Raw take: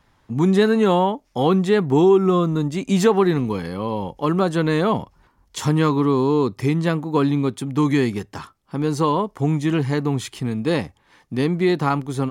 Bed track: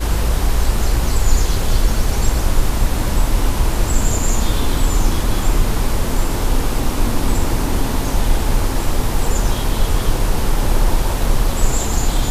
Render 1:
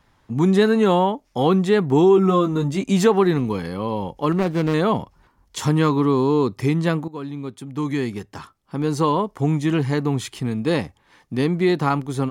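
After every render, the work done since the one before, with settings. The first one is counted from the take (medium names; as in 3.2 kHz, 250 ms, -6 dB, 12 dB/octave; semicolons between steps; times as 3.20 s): 2.16–2.84 s: doubling 15 ms -5 dB; 4.32–4.74 s: median filter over 41 samples; 7.08–9.00 s: fade in linear, from -15.5 dB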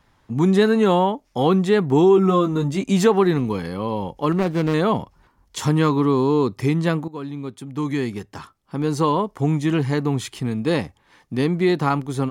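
no audible change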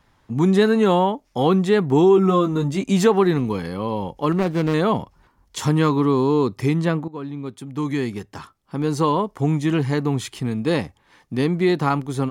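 6.85–7.46 s: treble shelf 4.3 kHz -9 dB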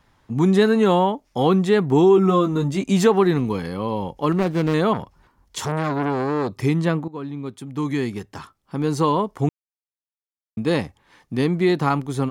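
4.93–6.53 s: transformer saturation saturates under 1 kHz; 9.49–10.57 s: mute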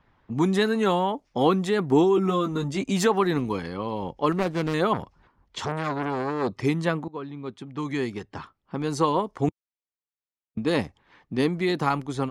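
level-controlled noise filter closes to 2.9 kHz, open at -15.5 dBFS; harmonic-percussive split harmonic -7 dB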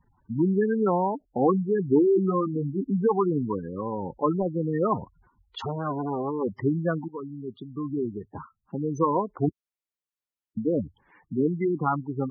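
spectral gate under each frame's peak -10 dB strong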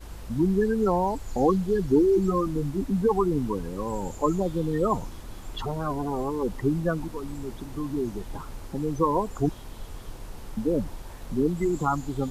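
add bed track -23 dB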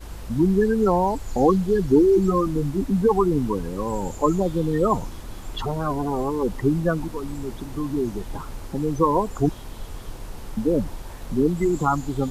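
trim +4 dB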